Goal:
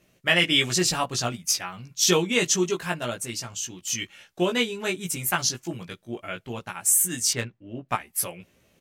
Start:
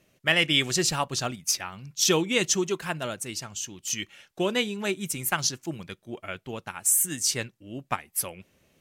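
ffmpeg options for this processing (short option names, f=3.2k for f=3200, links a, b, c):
-filter_complex "[0:a]asplit=2[a][b];[b]adelay=17,volume=-2.5dB[c];[a][c]amix=inputs=2:normalize=0,asettb=1/sr,asplit=3[d][e][f];[d]atrim=end=7.334[g];[e]atrim=start=7.33:end=7.89,asetpts=PTS-STARTPTS,afade=t=in:d=0.004:c=qsin,afade=t=out:st=0.556:d=0.004:c=qsin,adynamicsmooth=sensitivity=2.5:basefreq=2.5k[h];[f]atrim=start=7.886[i];[g][h]acrossfade=d=0.004:c1=hsin:c2=qsin[j];[j][i]acrossfade=d=0.004:c1=qsin:c2=hsin"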